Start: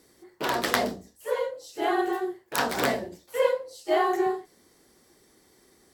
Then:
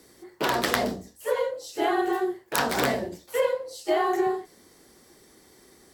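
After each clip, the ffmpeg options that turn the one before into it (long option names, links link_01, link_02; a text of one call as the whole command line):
ffmpeg -i in.wav -filter_complex "[0:a]acrossover=split=160[link_01][link_02];[link_02]acompressor=threshold=-27dB:ratio=3[link_03];[link_01][link_03]amix=inputs=2:normalize=0,volume=5dB" out.wav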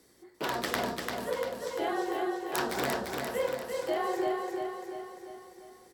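ffmpeg -i in.wav -af "aecho=1:1:345|690|1035|1380|1725|2070|2415:0.631|0.334|0.177|0.0939|0.0498|0.0264|0.014,volume=-7.5dB" out.wav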